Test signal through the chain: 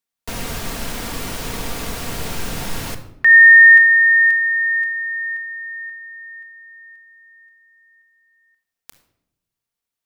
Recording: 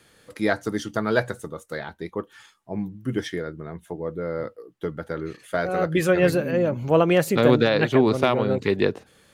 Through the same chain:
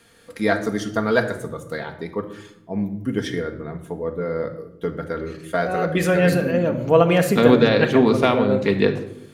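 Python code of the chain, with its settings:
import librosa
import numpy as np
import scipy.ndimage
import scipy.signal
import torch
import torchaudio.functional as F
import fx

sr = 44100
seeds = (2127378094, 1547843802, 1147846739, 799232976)

y = fx.room_shoebox(x, sr, seeds[0], volume_m3=2500.0, walls='furnished', distance_m=1.7)
y = y * 10.0 ** (1.5 / 20.0)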